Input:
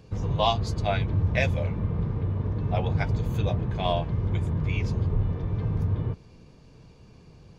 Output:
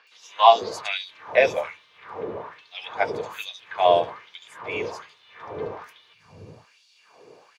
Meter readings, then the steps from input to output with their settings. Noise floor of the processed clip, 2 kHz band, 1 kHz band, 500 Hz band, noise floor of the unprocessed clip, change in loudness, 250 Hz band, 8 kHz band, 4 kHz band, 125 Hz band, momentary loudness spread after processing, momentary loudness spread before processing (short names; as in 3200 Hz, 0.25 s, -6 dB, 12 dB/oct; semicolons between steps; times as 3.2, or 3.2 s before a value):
-59 dBFS, +5.5 dB, +9.5 dB, +8.0 dB, -52 dBFS, +3.5 dB, -10.0 dB, n/a, +5.0 dB, -24.5 dB, 23 LU, 4 LU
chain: three bands offset in time mids, highs, lows 70/500 ms, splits 200/4400 Hz; LFO high-pass sine 1.2 Hz 420–3900 Hz; gain +5.5 dB